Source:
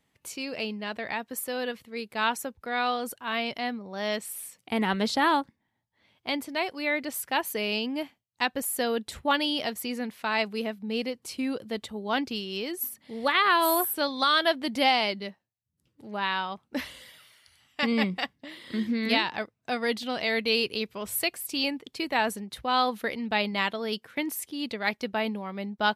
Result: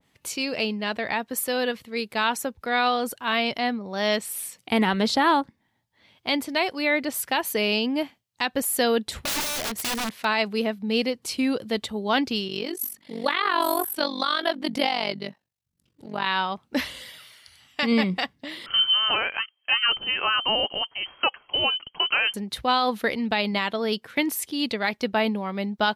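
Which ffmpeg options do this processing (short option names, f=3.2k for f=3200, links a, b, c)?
-filter_complex "[0:a]asplit=3[a][b][c];[a]afade=t=out:st=9.19:d=0.02[d];[b]aeval=exprs='(mod(26.6*val(0)+1,2)-1)/26.6':c=same,afade=t=in:st=9.19:d=0.02,afade=t=out:st=10.23:d=0.02[e];[c]afade=t=in:st=10.23:d=0.02[f];[d][e][f]amix=inputs=3:normalize=0,asplit=3[g][h][i];[g]afade=t=out:st=12.47:d=0.02[j];[h]tremolo=f=47:d=0.857,afade=t=in:st=12.47:d=0.02,afade=t=out:st=16.25:d=0.02[k];[i]afade=t=in:st=16.25:d=0.02[l];[j][k][l]amix=inputs=3:normalize=0,asettb=1/sr,asplit=3[m][n][o];[m]atrim=end=18.664[p];[n]atrim=start=18.66:end=22.34,asetpts=PTS-STARTPTS,afade=t=in:d=0.004:c=qsin,afade=t=out:st=3.676:d=0.004:c=qsin,lowpass=f=2.8k:t=q:w=0.5098,lowpass=f=2.8k:t=q:w=0.6013,lowpass=f=2.8k:t=q:w=0.9,lowpass=f=2.8k:t=q:w=2.563,afreqshift=-3300[q];[o]atrim=start=22.336[r];[p][q]acrossfade=d=0.004:c1=hsin:c2=qsin[s];[s][r]acrossfade=d=0.004:c1=qsin:c2=hsin,equalizer=f=4.1k:t=o:w=1.4:g=3,alimiter=limit=-16.5dB:level=0:latency=1:release=92,adynamicequalizer=threshold=0.01:dfrequency=1800:dqfactor=0.7:tfrequency=1800:tqfactor=0.7:attack=5:release=100:ratio=0.375:range=3:mode=cutabove:tftype=highshelf,volume=6dB"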